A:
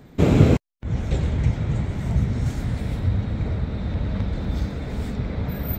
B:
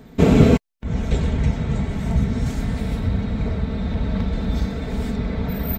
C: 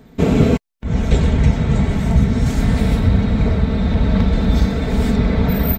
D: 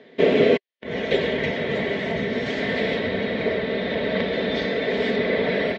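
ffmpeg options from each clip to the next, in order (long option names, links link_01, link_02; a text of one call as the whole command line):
ffmpeg -i in.wav -af "aecho=1:1:4.5:0.49,volume=2.5dB" out.wav
ffmpeg -i in.wav -af "dynaudnorm=framelen=190:gausssize=3:maxgain=11.5dB,volume=-1dB" out.wav
ffmpeg -i in.wav -af "highpass=380,equalizer=frequency=390:width_type=q:width=4:gain=6,equalizer=frequency=560:width_type=q:width=4:gain=8,equalizer=frequency=850:width_type=q:width=4:gain=-7,equalizer=frequency=1300:width_type=q:width=4:gain=-9,equalizer=frequency=1900:width_type=q:width=4:gain=10,equalizer=frequency=3200:width_type=q:width=4:gain=6,lowpass=frequency=4400:width=0.5412,lowpass=frequency=4400:width=1.3066" out.wav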